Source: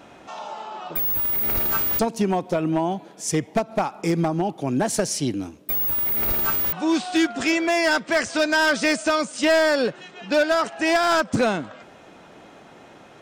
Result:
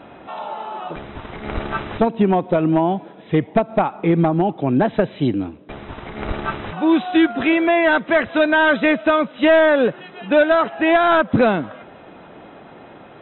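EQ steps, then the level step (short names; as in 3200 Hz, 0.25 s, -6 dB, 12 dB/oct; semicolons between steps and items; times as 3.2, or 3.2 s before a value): brick-wall FIR low-pass 4000 Hz; high shelf 2700 Hz -8.5 dB; +6.0 dB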